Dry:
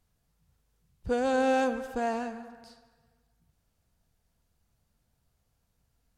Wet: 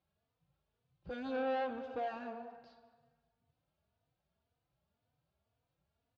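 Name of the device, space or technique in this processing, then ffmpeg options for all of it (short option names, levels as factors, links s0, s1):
barber-pole flanger into a guitar amplifier: -filter_complex "[0:a]asettb=1/sr,asplit=3[s0][s1][s2];[s0]atrim=end=1.364[s3];[s1]atrim=start=1.36:end=1.78,asetpts=PTS-STARTPTS,afade=t=in:d=0.004:c=qsin,afade=t=out:st=0.416:d=0.004:c=qsin,acrossover=split=3100[s4][s5];[s5]acompressor=threshold=0.00126:ratio=4:attack=1:release=60[s6];[s4][s6]amix=inputs=2:normalize=0[s7];[s2]atrim=start=1.776[s8];[s3][s7]acrossfade=d=0.004:c1=hsin:c2=qsin[s9];[s9][s8]acrossfade=d=0.004:c1=qsin:c2=hsin,asplit=2[s10][s11];[s11]adelay=3.3,afreqshift=1.9[s12];[s10][s12]amix=inputs=2:normalize=1,asoftclip=type=tanh:threshold=0.0316,highpass=97,equalizer=f=220:t=q:w=4:g=-6,equalizer=f=630:t=q:w=4:g=5,equalizer=f=1900:t=q:w=4:g=-5,lowpass=f=3900:w=0.5412,lowpass=f=3900:w=1.3066,asplit=2[s13][s14];[s14]adelay=199,lowpass=f=2000:p=1,volume=0.158,asplit=2[s15][s16];[s16]adelay=199,lowpass=f=2000:p=1,volume=0.42,asplit=2[s17][s18];[s18]adelay=199,lowpass=f=2000:p=1,volume=0.42,asplit=2[s19][s20];[s20]adelay=199,lowpass=f=2000:p=1,volume=0.42[s21];[s13][s15][s17][s19][s21]amix=inputs=5:normalize=0,volume=0.75"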